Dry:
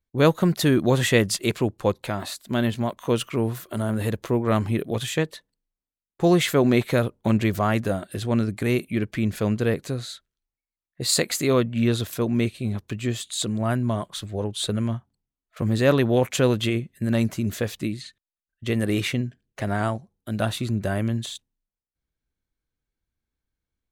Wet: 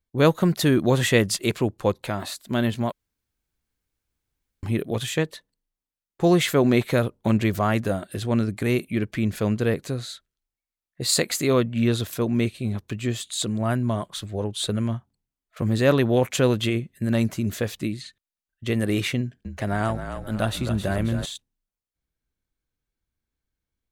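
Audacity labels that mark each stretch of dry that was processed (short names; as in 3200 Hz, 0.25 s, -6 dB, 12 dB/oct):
2.920000	4.630000	room tone
19.180000	21.250000	frequency-shifting echo 0.268 s, feedback 50%, per repeat -42 Hz, level -8.5 dB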